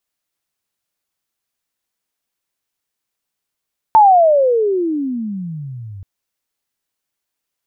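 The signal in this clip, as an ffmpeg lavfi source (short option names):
-f lavfi -i "aevalsrc='pow(10,(-4-25.5*t/2.08)/20)*sin(2*PI*900*2.08/log(93/900)*(exp(log(93/900)*t/2.08)-1))':d=2.08:s=44100"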